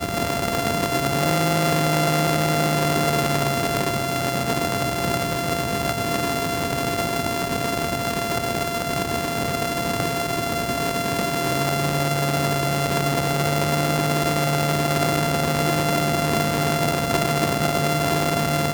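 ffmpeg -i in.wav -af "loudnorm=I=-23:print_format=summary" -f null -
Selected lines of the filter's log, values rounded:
Input Integrated:    -21.7 LUFS
Input True Peak:      -6.9 dBTP
Input LRA:             2.8 LU
Input Threshold:     -31.7 LUFS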